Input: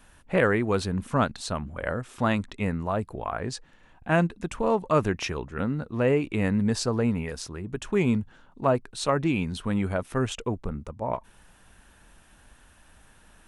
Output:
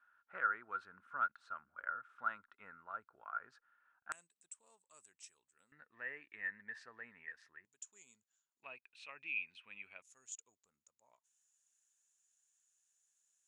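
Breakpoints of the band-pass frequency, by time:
band-pass, Q 15
1400 Hz
from 4.12 s 7900 Hz
from 5.72 s 1800 Hz
from 7.65 s 7000 Hz
from 8.63 s 2500 Hz
from 10.02 s 6900 Hz

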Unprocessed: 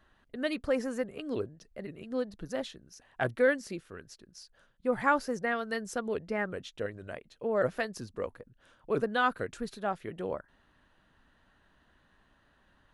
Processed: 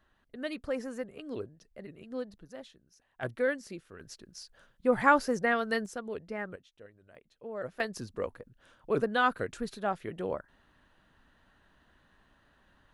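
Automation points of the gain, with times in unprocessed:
-4.5 dB
from 2.38 s -11 dB
from 3.23 s -4 dB
from 4 s +3.5 dB
from 5.86 s -5 dB
from 6.56 s -17 dB
from 7.15 s -10 dB
from 7.8 s +1 dB

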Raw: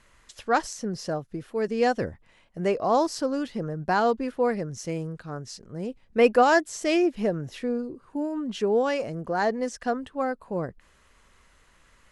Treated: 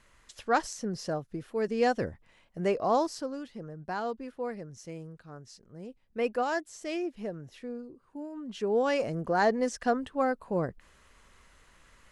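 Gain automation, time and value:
2.9 s -3 dB
3.42 s -11 dB
8.33 s -11 dB
9 s 0 dB

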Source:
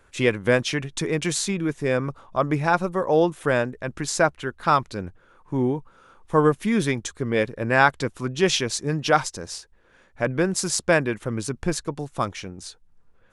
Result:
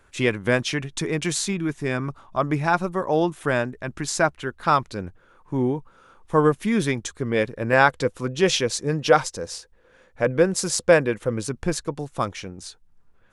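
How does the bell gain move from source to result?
bell 500 Hz 0.21 oct
-4 dB
from 1.53 s -13.5 dB
from 2.37 s -7 dB
from 4.38 s +0.5 dB
from 7.73 s +10 dB
from 11.46 s +3 dB
from 12.64 s -6 dB

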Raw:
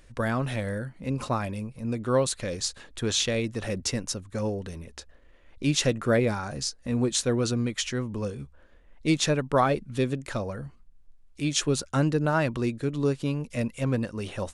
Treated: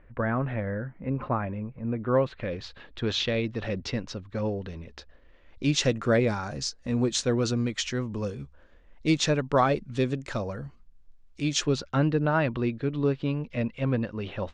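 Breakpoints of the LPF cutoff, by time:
LPF 24 dB/oct
1.95 s 2100 Hz
3 s 4300 Hz
4.64 s 4300 Hz
5.86 s 6900 Hz
11.57 s 6900 Hz
11.99 s 3800 Hz

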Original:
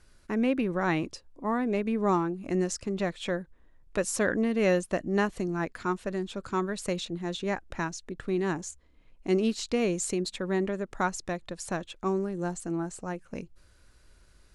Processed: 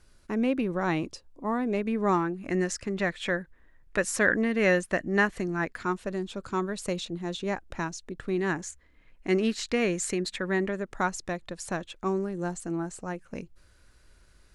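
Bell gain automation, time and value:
bell 1800 Hz 0.82 oct
1.6 s -2 dB
2.3 s +9 dB
5.45 s +9 dB
6.12 s -1 dB
8.14 s -1 dB
8.69 s +10.5 dB
10.37 s +10.5 dB
10.95 s +2 dB

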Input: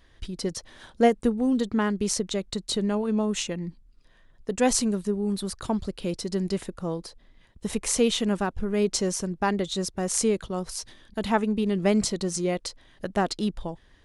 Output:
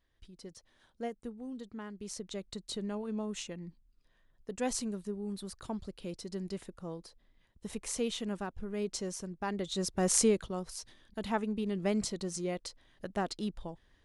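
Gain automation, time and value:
1.91 s -19 dB
2.38 s -11.5 dB
9.45 s -11.5 dB
10.09 s 0 dB
10.69 s -9 dB

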